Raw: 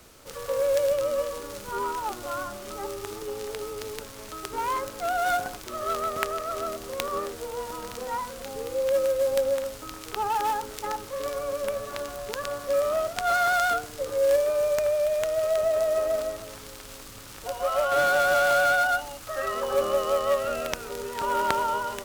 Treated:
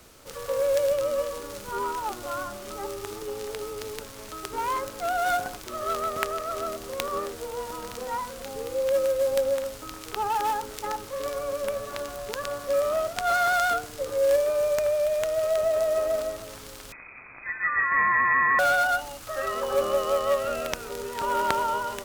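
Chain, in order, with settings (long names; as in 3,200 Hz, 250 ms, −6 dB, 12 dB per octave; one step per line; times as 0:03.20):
0:16.92–0:18.59: voice inversion scrambler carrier 2,500 Hz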